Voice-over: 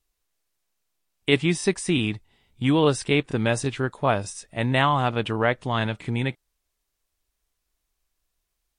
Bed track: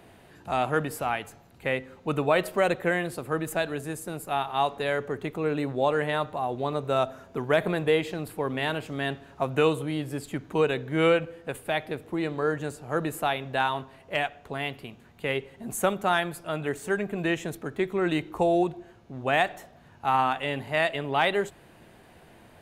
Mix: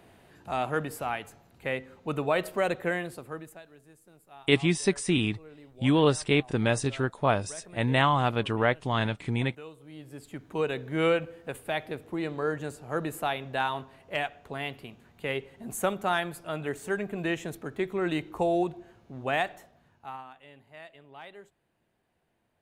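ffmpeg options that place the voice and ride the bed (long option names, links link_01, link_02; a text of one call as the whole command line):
ffmpeg -i stem1.wav -i stem2.wav -filter_complex "[0:a]adelay=3200,volume=-2.5dB[link_01];[1:a]volume=16dB,afade=type=out:start_time=2.92:duration=0.69:silence=0.112202,afade=type=in:start_time=9.79:duration=1.1:silence=0.105925,afade=type=out:start_time=19.23:duration=1.01:silence=0.105925[link_02];[link_01][link_02]amix=inputs=2:normalize=0" out.wav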